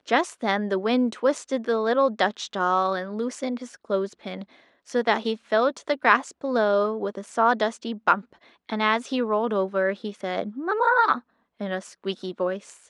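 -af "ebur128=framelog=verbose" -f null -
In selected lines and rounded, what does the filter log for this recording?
Integrated loudness:
  I:         -24.7 LUFS
  Threshold: -35.0 LUFS
Loudness range:
  LRA:         3.1 LU
  Threshold: -45.0 LUFS
  LRA low:   -26.7 LUFS
  LRA high:  -23.5 LUFS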